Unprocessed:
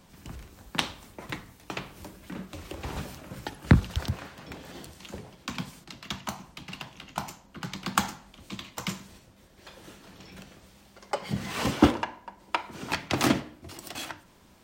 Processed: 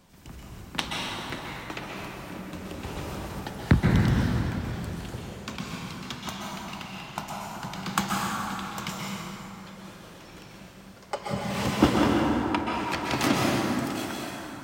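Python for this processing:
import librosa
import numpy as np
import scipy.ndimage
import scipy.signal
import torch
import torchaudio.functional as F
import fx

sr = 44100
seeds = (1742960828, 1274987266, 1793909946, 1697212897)

y = fx.rev_plate(x, sr, seeds[0], rt60_s=3.5, hf_ratio=0.55, predelay_ms=115, drr_db=-3.5)
y = y * 10.0 ** (-2.0 / 20.0)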